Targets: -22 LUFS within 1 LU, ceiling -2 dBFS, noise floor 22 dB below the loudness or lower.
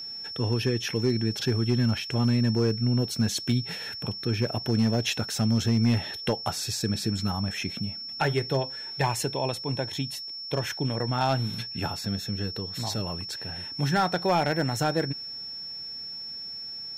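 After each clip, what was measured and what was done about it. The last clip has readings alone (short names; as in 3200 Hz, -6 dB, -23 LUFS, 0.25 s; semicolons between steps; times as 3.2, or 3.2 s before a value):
clipped 0.4%; flat tops at -15.5 dBFS; steady tone 5400 Hz; tone level -35 dBFS; loudness -27.5 LUFS; peak -15.5 dBFS; loudness target -22.0 LUFS
-> clip repair -15.5 dBFS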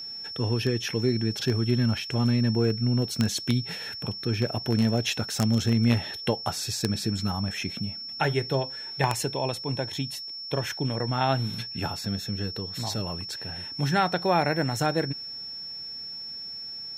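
clipped 0.0%; steady tone 5400 Hz; tone level -35 dBFS
-> notch 5400 Hz, Q 30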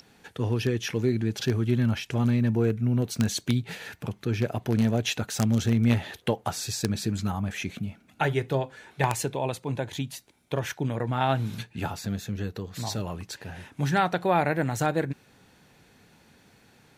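steady tone none; loudness -28.0 LUFS; peak -6.5 dBFS; loudness target -22.0 LUFS
-> gain +6 dB; limiter -2 dBFS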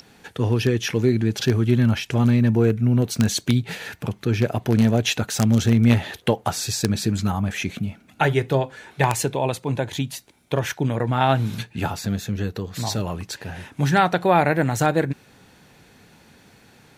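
loudness -22.0 LUFS; peak -2.0 dBFS; noise floor -53 dBFS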